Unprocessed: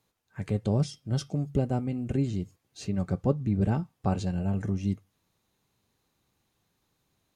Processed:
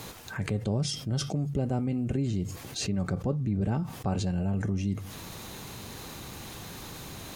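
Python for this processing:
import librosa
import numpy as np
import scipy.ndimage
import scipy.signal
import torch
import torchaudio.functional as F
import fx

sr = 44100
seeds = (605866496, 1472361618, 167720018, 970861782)

y = fx.env_flatten(x, sr, amount_pct=70)
y = y * 10.0 ** (-5.5 / 20.0)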